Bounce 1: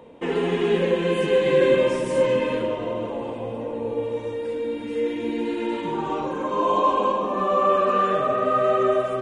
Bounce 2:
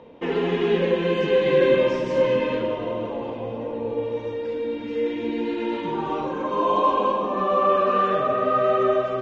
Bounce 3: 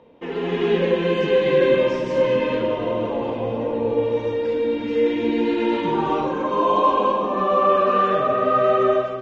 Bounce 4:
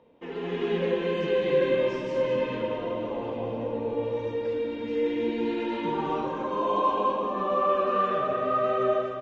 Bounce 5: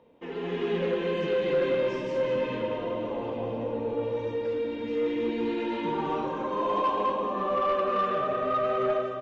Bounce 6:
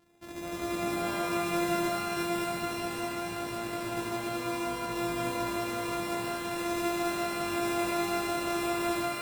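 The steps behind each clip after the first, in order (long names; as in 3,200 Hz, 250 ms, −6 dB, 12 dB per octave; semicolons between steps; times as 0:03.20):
Butterworth low-pass 5,900 Hz 36 dB per octave
automatic gain control gain up to 11 dB; level −5 dB
slap from a distant wall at 36 metres, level −7 dB; level −8 dB
soft clipping −18.5 dBFS, distortion −19 dB
samples sorted by size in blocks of 128 samples; reverb with rising layers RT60 1.5 s, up +12 semitones, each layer −2 dB, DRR 2 dB; level −7.5 dB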